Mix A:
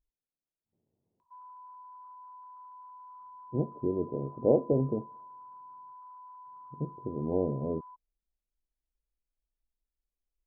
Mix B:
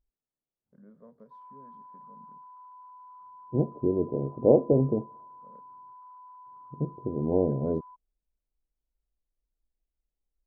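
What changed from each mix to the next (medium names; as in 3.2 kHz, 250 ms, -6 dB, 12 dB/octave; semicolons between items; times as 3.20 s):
first voice: unmuted; second voice +4.5 dB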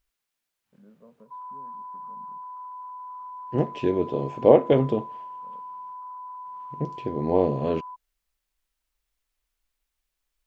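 second voice: remove Gaussian low-pass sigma 14 samples; background +10.5 dB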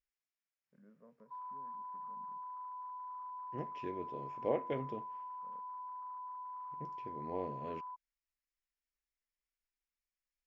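second voice -10.5 dB; master: add rippled Chebyshev low-pass 7.2 kHz, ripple 9 dB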